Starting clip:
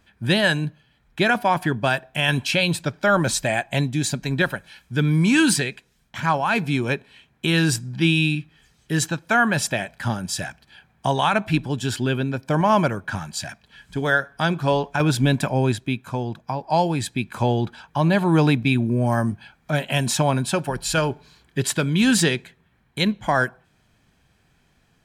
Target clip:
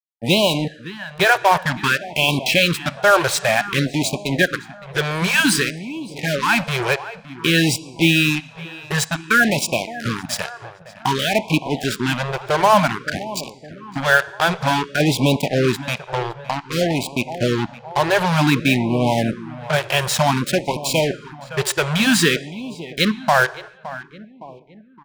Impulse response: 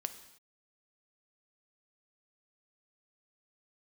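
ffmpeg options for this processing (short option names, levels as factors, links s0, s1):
-filter_complex "[0:a]acrusher=bits=3:mix=0:aa=0.5,lowshelf=f=140:g=-12,asplit=2[s0][s1];[s1]adelay=565,lowpass=f=2200:p=1,volume=0.178,asplit=2[s2][s3];[s3]adelay=565,lowpass=f=2200:p=1,volume=0.53,asplit=2[s4][s5];[s5]adelay=565,lowpass=f=2200:p=1,volume=0.53,asplit=2[s6][s7];[s7]adelay=565,lowpass=f=2200:p=1,volume=0.53,asplit=2[s8][s9];[s9]adelay=565,lowpass=f=2200:p=1,volume=0.53[s10];[s0][s2][s4][s6][s8][s10]amix=inputs=6:normalize=0,asplit=2[s11][s12];[1:a]atrim=start_sample=2205,lowpass=5900[s13];[s12][s13]afir=irnorm=-1:irlink=0,volume=0.668[s14];[s11][s14]amix=inputs=2:normalize=0,afftfilt=real='re*(1-between(b*sr/1024,220*pow(1600/220,0.5+0.5*sin(2*PI*0.54*pts/sr))/1.41,220*pow(1600/220,0.5+0.5*sin(2*PI*0.54*pts/sr))*1.41))':imag='im*(1-between(b*sr/1024,220*pow(1600/220,0.5+0.5*sin(2*PI*0.54*pts/sr))/1.41,220*pow(1600/220,0.5+0.5*sin(2*PI*0.54*pts/sr))*1.41))':win_size=1024:overlap=0.75,volume=1.19"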